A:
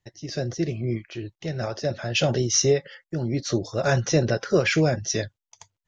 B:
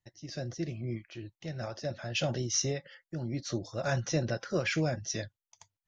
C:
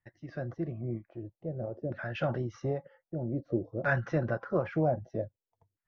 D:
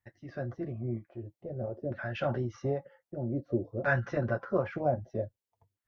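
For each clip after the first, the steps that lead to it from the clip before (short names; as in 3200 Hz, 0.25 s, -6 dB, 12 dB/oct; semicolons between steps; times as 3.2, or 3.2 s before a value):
bell 420 Hz -8.5 dB 0.25 oct; gain -8.5 dB
LFO low-pass saw down 0.52 Hz 370–1800 Hz
notch comb 160 Hz; gain +1.5 dB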